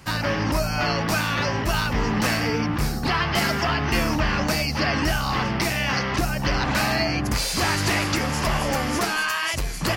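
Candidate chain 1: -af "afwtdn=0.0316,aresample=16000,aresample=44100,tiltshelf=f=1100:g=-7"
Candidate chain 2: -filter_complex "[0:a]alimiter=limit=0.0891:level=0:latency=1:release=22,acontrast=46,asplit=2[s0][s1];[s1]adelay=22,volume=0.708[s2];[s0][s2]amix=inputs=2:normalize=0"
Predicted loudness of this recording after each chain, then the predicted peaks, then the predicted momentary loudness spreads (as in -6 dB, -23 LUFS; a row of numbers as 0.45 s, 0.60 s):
-23.0 LUFS, -21.5 LUFS; -6.5 dBFS, -10.5 dBFS; 6 LU, 1 LU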